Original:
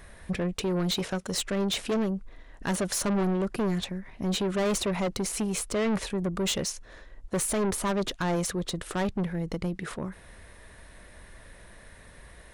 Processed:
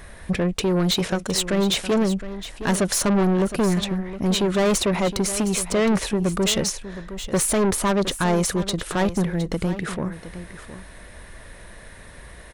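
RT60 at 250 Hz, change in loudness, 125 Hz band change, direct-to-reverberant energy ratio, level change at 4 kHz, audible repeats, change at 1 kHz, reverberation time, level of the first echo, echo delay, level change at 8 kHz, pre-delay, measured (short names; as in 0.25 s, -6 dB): none, +7.0 dB, +7.0 dB, none, +7.0 dB, 1, +7.0 dB, none, -13.0 dB, 0.714 s, +7.0 dB, none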